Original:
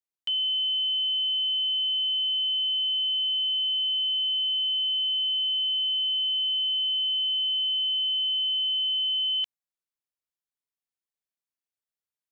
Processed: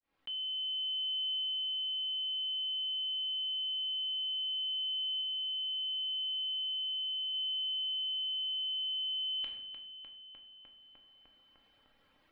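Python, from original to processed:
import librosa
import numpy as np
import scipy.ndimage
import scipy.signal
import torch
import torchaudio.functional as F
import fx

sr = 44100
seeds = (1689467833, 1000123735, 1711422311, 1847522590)

y = fx.fade_in_head(x, sr, length_s=1.33)
y = fx.dereverb_blind(y, sr, rt60_s=1.3)
y = fx.peak_eq(y, sr, hz=2900.0, db=-3.0, octaves=1.6, at=(5.21, 7.34))
y = y + 0.45 * np.pad(y, (int(3.7 * sr / 1000.0), 0))[:len(y)]
y = fx.rider(y, sr, range_db=3, speed_s=2.0)
y = fx.quant_float(y, sr, bits=6)
y = fx.air_absorb(y, sr, metres=430.0)
y = fx.echo_filtered(y, sr, ms=302, feedback_pct=65, hz=2900.0, wet_db=-16.5)
y = fx.room_shoebox(y, sr, seeds[0], volume_m3=82.0, walls='mixed', distance_m=0.36)
y = fx.env_flatten(y, sr, amount_pct=50)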